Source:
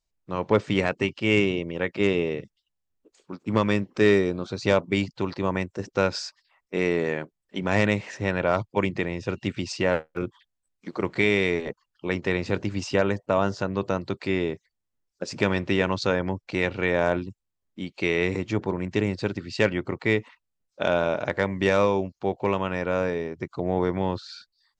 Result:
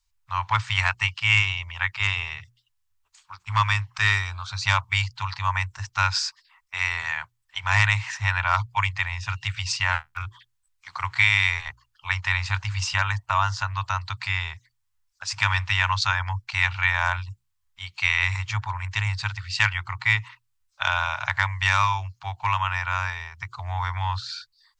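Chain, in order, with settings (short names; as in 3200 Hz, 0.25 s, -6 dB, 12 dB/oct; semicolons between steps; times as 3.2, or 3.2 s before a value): elliptic band-stop 100–950 Hz, stop band 40 dB; notches 60/120/180/240/300/360 Hz; gain +7.5 dB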